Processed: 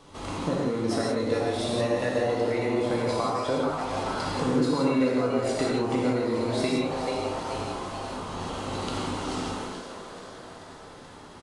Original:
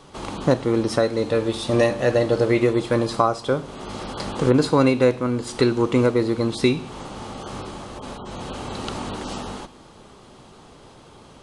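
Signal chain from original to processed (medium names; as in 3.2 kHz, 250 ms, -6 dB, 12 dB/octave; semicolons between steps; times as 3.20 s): frequency-shifting echo 433 ms, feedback 60%, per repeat +140 Hz, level -10.5 dB; compression 4:1, threshold -21 dBFS, peak gain reduction 8.5 dB; reverberation, pre-delay 3 ms, DRR -3.5 dB; trim -6 dB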